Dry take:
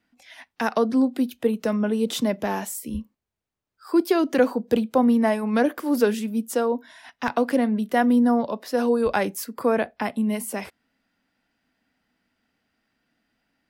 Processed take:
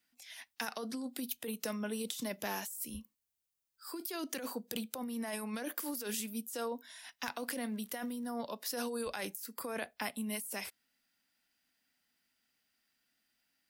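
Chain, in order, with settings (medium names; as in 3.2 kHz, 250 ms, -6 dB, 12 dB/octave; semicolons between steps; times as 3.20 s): pre-emphasis filter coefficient 0.9; compressor with a negative ratio -40 dBFS, ratio -1; 7.71–8.30 s: crackle 100 per s -54 dBFS; trim +1.5 dB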